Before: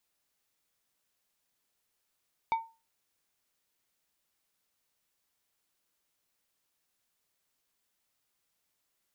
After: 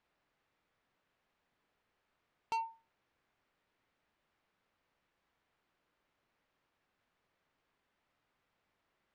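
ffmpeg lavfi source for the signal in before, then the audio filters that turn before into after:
-f lavfi -i "aevalsrc='0.0794*pow(10,-3*t/0.3)*sin(2*PI*906*t)+0.0224*pow(10,-3*t/0.158)*sin(2*PI*2265*t)+0.00631*pow(10,-3*t/0.114)*sin(2*PI*3624*t)+0.00178*pow(10,-3*t/0.097)*sin(2*PI*4530*t)+0.000501*pow(10,-3*t/0.081)*sin(2*PI*5889*t)':d=0.89:s=44100"
-filter_complex "[0:a]asplit=2[s0][s1];[s1]aeval=exprs='0.106*sin(PI/2*3.16*val(0)/0.106)':c=same,volume=0.266[s2];[s0][s2]amix=inputs=2:normalize=0,lowpass=2100,asoftclip=type=tanh:threshold=0.0237"

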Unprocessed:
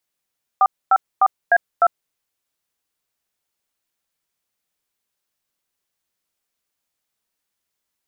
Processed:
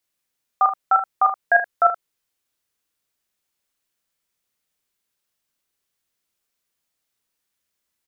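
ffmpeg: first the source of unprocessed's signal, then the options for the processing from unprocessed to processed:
-f lavfi -i "aevalsrc='0.237*clip(min(mod(t,0.302),0.05-mod(t,0.302))/0.002,0,1)*(eq(floor(t/0.302),0)*(sin(2*PI*770*mod(t,0.302))+sin(2*PI*1209*mod(t,0.302)))+eq(floor(t/0.302),1)*(sin(2*PI*770*mod(t,0.302))+sin(2*PI*1336*mod(t,0.302)))+eq(floor(t/0.302),2)*(sin(2*PI*770*mod(t,0.302))+sin(2*PI*1209*mod(t,0.302)))+eq(floor(t/0.302),3)*(sin(2*PI*697*mod(t,0.302))+sin(2*PI*1633*mod(t,0.302)))+eq(floor(t/0.302),4)*(sin(2*PI*697*mod(t,0.302))+sin(2*PI*1336*mod(t,0.302))))':d=1.51:s=44100"
-filter_complex "[0:a]equalizer=f=800:w=1.7:g=-3,asplit=2[s0][s1];[s1]aecho=0:1:33|77:0.501|0.266[s2];[s0][s2]amix=inputs=2:normalize=0"

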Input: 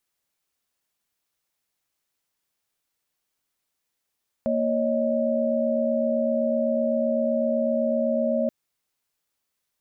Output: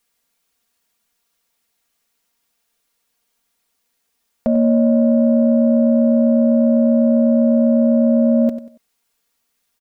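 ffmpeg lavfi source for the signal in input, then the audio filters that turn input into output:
-f lavfi -i "aevalsrc='0.0562*(sin(2*PI*233.08*t)+sin(2*PI*554.37*t)+sin(2*PI*622.25*t))':d=4.03:s=44100"
-af "aecho=1:1:4.3:0.69,acontrast=86,aecho=1:1:94|188|282:0.251|0.0804|0.0257"

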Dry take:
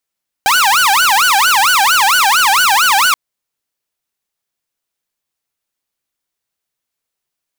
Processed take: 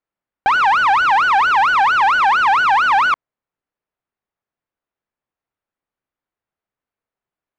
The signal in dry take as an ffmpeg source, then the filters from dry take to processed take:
-f lavfi -i "aevalsrc='0.501*(2*mod((1137*t-363/(2*PI*4.4)*sin(2*PI*4.4*t)),1)-1)':d=2.68:s=44100"
-af "lowpass=1600"

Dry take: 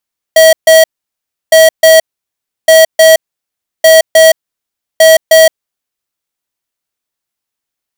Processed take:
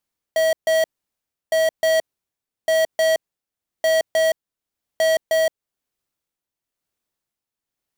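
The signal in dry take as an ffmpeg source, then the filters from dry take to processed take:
-f lavfi -i "aevalsrc='0.708*(2*lt(mod(643*t,1),0.5)-1)*clip(min(mod(mod(t,1.16),0.31),0.17-mod(mod(t,1.16),0.31))/0.005,0,1)*lt(mod(t,1.16),0.62)':d=5.8:s=44100"
-af "tiltshelf=f=710:g=3.5,tremolo=f=1:d=0.51,asoftclip=type=tanh:threshold=0.15"

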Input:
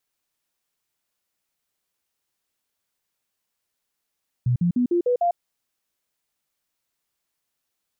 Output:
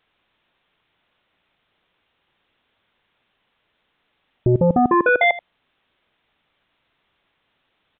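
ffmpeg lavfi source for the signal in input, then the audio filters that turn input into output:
-f lavfi -i "aevalsrc='0.141*clip(min(mod(t,0.15),0.1-mod(t,0.15))/0.005,0,1)*sin(2*PI*123*pow(2,floor(t/0.15)/2)*mod(t,0.15))':d=0.9:s=44100"
-af "acontrast=76,aresample=8000,aeval=exprs='0.299*sin(PI/2*2*val(0)/0.299)':c=same,aresample=44100,aecho=1:1:81:0.141"

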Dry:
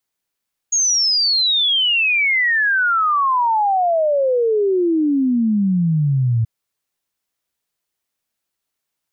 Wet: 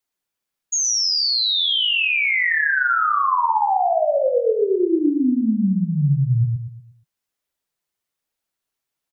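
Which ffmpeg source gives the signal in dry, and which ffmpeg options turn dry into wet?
-f lavfi -i "aevalsrc='0.211*clip(min(t,5.73-t)/0.01,0,1)*sin(2*PI*6700*5.73/log(110/6700)*(exp(log(110/6700)*t/5.73)-1))':d=5.73:s=44100"
-filter_complex "[0:a]flanger=delay=1.8:depth=9.1:regen=29:speed=1.2:shape=triangular,asplit=2[s0][s1];[s1]adelay=118,lowpass=f=2200:p=1,volume=0.668,asplit=2[s2][s3];[s3]adelay=118,lowpass=f=2200:p=1,volume=0.39,asplit=2[s4][s5];[s5]adelay=118,lowpass=f=2200:p=1,volume=0.39,asplit=2[s6][s7];[s7]adelay=118,lowpass=f=2200:p=1,volume=0.39,asplit=2[s8][s9];[s9]adelay=118,lowpass=f=2200:p=1,volume=0.39[s10];[s2][s4][s6][s8][s10]amix=inputs=5:normalize=0[s11];[s0][s11]amix=inputs=2:normalize=0"

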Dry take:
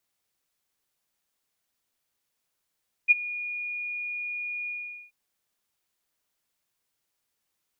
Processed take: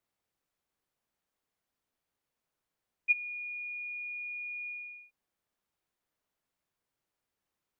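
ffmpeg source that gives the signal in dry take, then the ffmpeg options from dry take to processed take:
-f lavfi -i "aevalsrc='0.266*sin(2*PI*2440*t)':d=2.031:s=44100,afade=t=in:d=0.03,afade=t=out:st=0.03:d=0.023:silence=0.112,afade=t=out:st=1.6:d=0.431"
-af "highshelf=f=2300:g=-11.5"

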